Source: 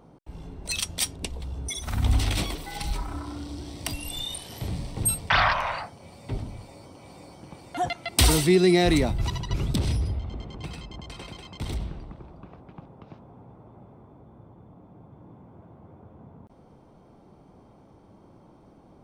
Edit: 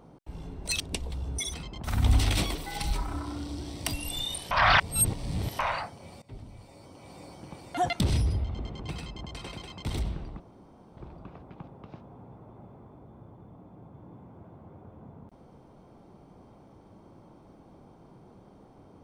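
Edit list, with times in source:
0.8–1.1 cut
4.51–5.59 reverse
6.22–7.25 fade in, from -19 dB
8–9.75 cut
10.72–11.02 copy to 1.84
12.15 insert room tone 0.57 s

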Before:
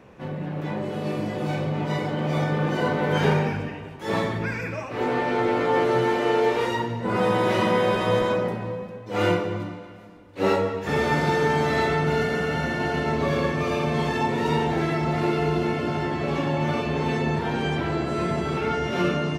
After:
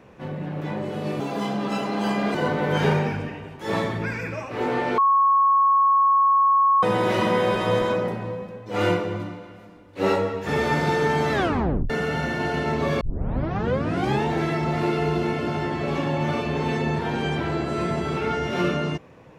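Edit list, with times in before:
1.2–2.75 speed 135%
5.38–7.23 bleep 1100 Hz -14.5 dBFS
11.73 tape stop 0.57 s
13.41 tape start 1.25 s

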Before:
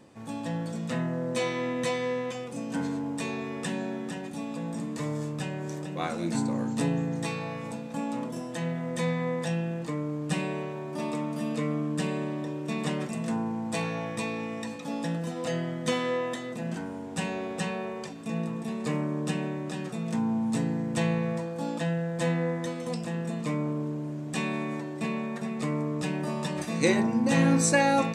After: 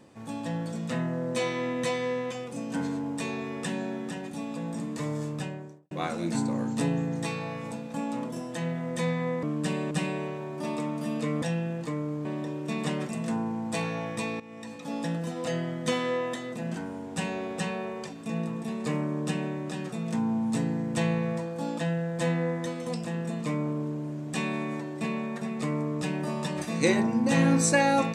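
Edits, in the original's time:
5.33–5.91 studio fade out
9.43–10.26 swap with 11.77–12.25
14.4–14.97 fade in, from -16 dB

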